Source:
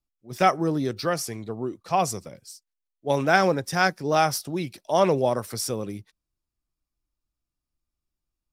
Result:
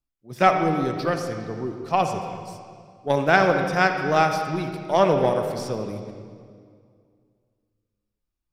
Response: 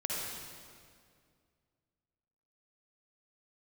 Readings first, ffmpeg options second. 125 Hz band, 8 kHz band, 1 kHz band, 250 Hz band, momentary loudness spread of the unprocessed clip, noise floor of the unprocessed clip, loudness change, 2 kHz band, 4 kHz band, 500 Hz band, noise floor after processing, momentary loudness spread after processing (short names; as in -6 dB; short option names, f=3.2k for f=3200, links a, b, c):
+2.0 dB, -8.5 dB, +2.5 dB, +1.5 dB, 16 LU, under -85 dBFS, +2.0 dB, +3.0 dB, -1.5 dB, +2.5 dB, -83 dBFS, 16 LU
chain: -filter_complex "[0:a]aeval=exprs='0.668*(cos(1*acos(clip(val(0)/0.668,-1,1)))-cos(1*PI/2))+0.015*(cos(6*acos(clip(val(0)/0.668,-1,1)))-cos(6*PI/2))+0.0335*(cos(7*acos(clip(val(0)/0.668,-1,1)))-cos(7*PI/2))':c=same,acrossover=split=5600[a][b];[b]acompressor=threshold=-46dB:ratio=4:attack=1:release=60[c];[a][c]amix=inputs=2:normalize=0,asplit=2[d][e];[1:a]atrim=start_sample=2205,lowpass=4.3k[f];[e][f]afir=irnorm=-1:irlink=0,volume=-6dB[g];[d][g]amix=inputs=2:normalize=0"